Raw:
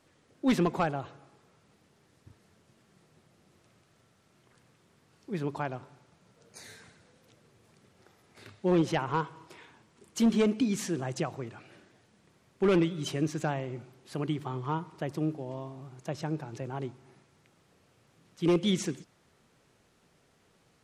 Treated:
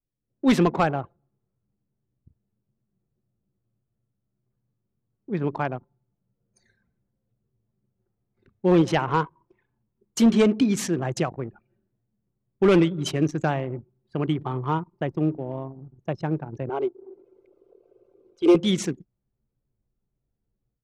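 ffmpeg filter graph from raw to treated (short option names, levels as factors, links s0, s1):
-filter_complex "[0:a]asettb=1/sr,asplit=3[s0][s1][s2];[s0]atrim=end=16.694[s3];[s1]atrim=start=16.69:end=18.55,asetpts=PTS-STARTPTS,afade=t=in:d=0.004:c=qsin,afade=t=out:st=1.856:d=0.004:c=qsin,lowshelf=f=260:t=q:w=3:g=-13,acompressor=mode=upward:threshold=0.0158:ratio=2.5:attack=3.2:release=140:knee=2.83:detection=peak,asuperstop=centerf=1800:order=4:qfactor=4.8[s4];[s2]atrim=start=18.546[s5];[s3][s4]acrossfade=d=0.004:c1=hsin:c2=qsin[s6];[s6][s5]acrossfade=d=0.004:c1=qsin:c2=hsin,anlmdn=0.631,dynaudnorm=f=190:g=3:m=3.55,volume=0.631"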